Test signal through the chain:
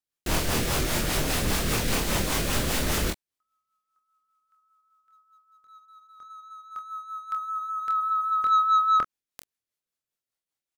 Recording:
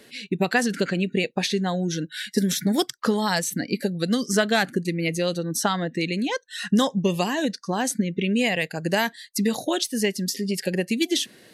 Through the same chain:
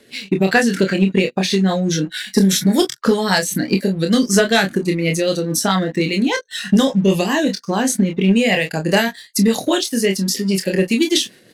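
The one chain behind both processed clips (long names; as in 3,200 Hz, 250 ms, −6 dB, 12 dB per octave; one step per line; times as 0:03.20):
ambience of single reflections 26 ms −5 dB, 42 ms −13.5 dB
rotating-speaker cabinet horn 5 Hz
leveller curve on the samples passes 1
level +4.5 dB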